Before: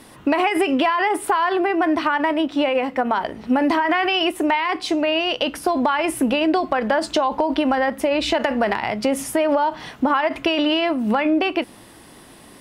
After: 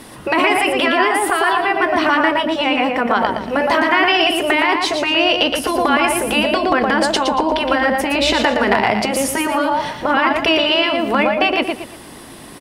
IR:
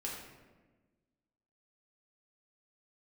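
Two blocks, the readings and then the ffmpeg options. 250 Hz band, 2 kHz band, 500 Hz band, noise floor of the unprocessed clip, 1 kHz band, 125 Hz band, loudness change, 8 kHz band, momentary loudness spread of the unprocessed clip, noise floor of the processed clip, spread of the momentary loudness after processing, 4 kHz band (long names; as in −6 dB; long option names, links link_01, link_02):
+1.0 dB, +7.5 dB, +3.5 dB, −45 dBFS, +4.5 dB, +6.0 dB, +4.5 dB, +8.0 dB, 4 LU, −37 dBFS, 4 LU, +7.5 dB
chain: -af "aecho=1:1:116|232|348|464:0.473|0.156|0.0515|0.017,afftfilt=real='re*lt(hypot(re,im),0.794)':imag='im*lt(hypot(re,im),0.794)':win_size=1024:overlap=0.75,volume=7dB"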